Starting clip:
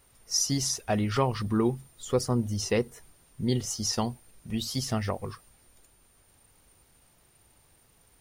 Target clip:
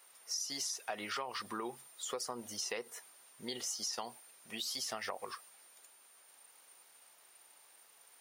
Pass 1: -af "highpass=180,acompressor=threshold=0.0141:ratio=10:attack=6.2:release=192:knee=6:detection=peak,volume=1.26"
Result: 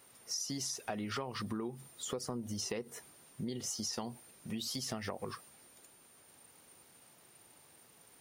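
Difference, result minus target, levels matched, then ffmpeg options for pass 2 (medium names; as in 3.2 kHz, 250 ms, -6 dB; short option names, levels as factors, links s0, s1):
250 Hz band +8.5 dB
-af "highpass=690,acompressor=threshold=0.0141:ratio=10:attack=6.2:release=192:knee=6:detection=peak,volume=1.26"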